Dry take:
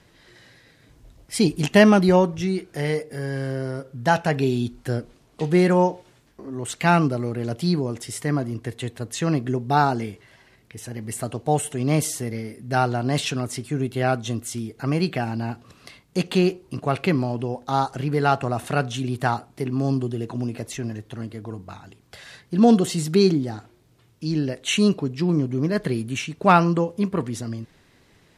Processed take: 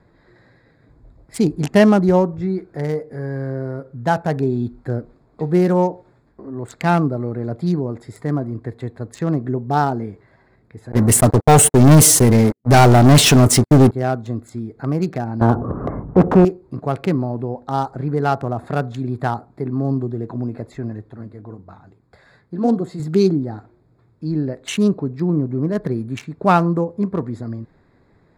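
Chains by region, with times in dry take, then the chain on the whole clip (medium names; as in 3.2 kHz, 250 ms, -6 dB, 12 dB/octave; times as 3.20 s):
10.92–13.91 s: gate -36 dBFS, range -30 dB + waveshaping leveller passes 5
15.41–16.45 s: inverse Chebyshev low-pass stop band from 4.3 kHz, stop band 60 dB + bass shelf 490 Hz +9.5 dB + spectrum-flattening compressor 2:1
21.10–23.00 s: treble shelf 7.5 kHz +4 dB + flange 1.8 Hz, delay 1.8 ms, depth 9.6 ms, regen -64%
whole clip: local Wiener filter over 15 samples; dynamic bell 2.6 kHz, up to -5 dB, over -38 dBFS, Q 0.71; trim +2.5 dB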